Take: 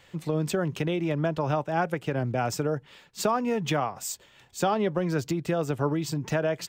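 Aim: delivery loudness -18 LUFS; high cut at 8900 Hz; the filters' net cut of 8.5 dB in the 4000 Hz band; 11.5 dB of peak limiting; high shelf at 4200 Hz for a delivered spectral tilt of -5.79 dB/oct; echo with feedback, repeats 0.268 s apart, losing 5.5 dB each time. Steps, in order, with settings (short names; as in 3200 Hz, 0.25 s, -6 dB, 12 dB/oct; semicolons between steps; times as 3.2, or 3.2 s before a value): LPF 8900 Hz; bell 4000 Hz -8 dB; high shelf 4200 Hz -5.5 dB; limiter -22.5 dBFS; feedback echo 0.268 s, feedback 53%, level -5.5 dB; gain +13.5 dB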